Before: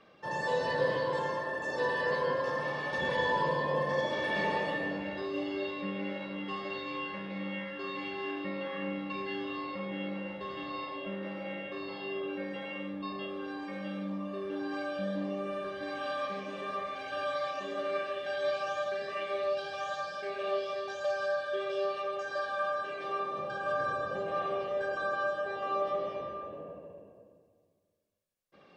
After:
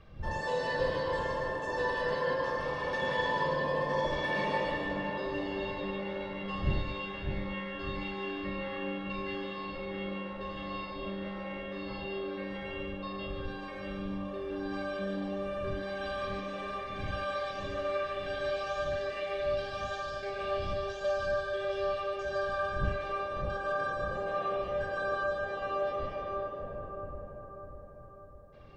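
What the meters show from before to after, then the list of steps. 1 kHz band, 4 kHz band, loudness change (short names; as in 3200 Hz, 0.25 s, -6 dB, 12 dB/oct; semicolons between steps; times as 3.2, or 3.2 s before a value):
-0.5 dB, 0.0 dB, 0.0 dB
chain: wind noise 92 Hz -44 dBFS; split-band echo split 1400 Hz, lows 0.601 s, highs 0.147 s, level -6 dB; gain -1.5 dB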